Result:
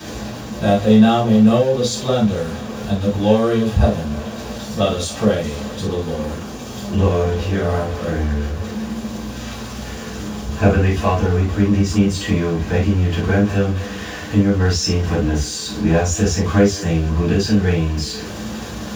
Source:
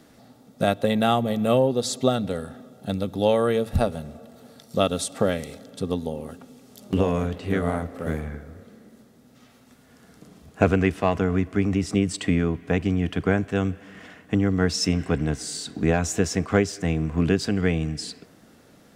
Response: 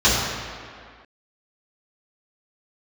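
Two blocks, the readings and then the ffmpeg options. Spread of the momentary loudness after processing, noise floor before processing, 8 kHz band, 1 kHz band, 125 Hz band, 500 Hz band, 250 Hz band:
13 LU, -54 dBFS, +6.0 dB, +5.0 dB, +8.5 dB, +5.0 dB, +7.5 dB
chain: -filter_complex "[0:a]aeval=exprs='val(0)+0.5*0.0422*sgn(val(0))':c=same[a];[1:a]atrim=start_sample=2205,atrim=end_sample=3528[b];[a][b]afir=irnorm=-1:irlink=0,volume=-17.5dB"

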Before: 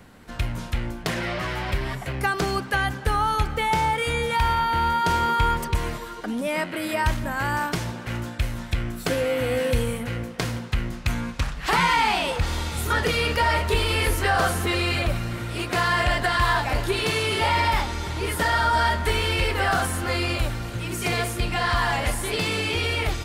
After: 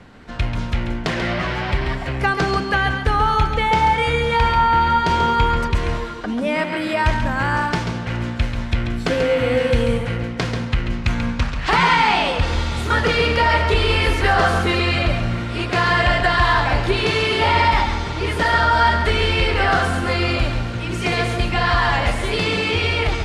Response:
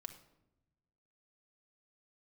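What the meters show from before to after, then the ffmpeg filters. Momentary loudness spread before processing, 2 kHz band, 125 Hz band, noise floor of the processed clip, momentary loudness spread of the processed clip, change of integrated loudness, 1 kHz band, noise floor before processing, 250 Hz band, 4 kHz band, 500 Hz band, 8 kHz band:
8 LU, +5.0 dB, +5.5 dB, -27 dBFS, 8 LU, +5.0 dB, +5.5 dB, -37 dBFS, +6.0 dB, +4.5 dB, +6.0 dB, -3.5 dB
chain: -filter_complex "[0:a]lowpass=5.1k,asplit=2[a][b];[1:a]atrim=start_sample=2205,adelay=137[c];[b][c]afir=irnorm=-1:irlink=0,volume=-2dB[d];[a][d]amix=inputs=2:normalize=0,volume=4.5dB"

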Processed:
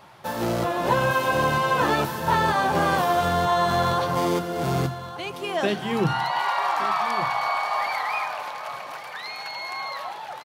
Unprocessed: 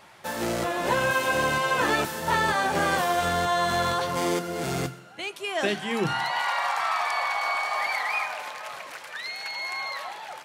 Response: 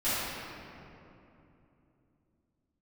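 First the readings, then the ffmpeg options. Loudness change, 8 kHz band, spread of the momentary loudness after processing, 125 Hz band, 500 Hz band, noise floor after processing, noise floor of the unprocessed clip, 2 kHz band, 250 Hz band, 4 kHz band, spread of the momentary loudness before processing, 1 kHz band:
+2.0 dB, -3.5 dB, 12 LU, +6.5 dB, +3.0 dB, -37 dBFS, -46 dBFS, -1.0 dB, +3.5 dB, -0.5 dB, 11 LU, +3.5 dB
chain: -af "equalizer=f=125:t=o:w=1:g=6,equalizer=f=1k:t=o:w=1:g=3,equalizer=f=2k:t=o:w=1:g=-5,equalizer=f=8k:t=o:w=1:g=-7,aecho=1:1:1171:0.2,volume=2dB"

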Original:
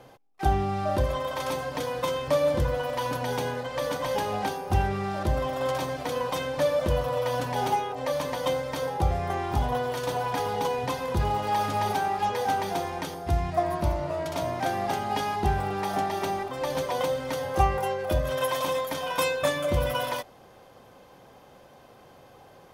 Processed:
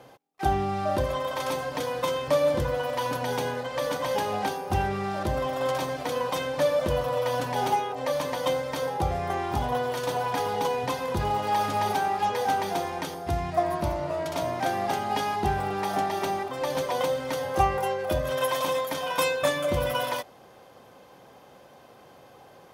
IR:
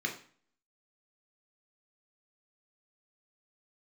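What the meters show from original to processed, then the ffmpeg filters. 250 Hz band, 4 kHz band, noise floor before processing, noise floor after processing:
0.0 dB, +1.0 dB, -53 dBFS, -52 dBFS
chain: -af "highpass=f=120:p=1,volume=1dB"

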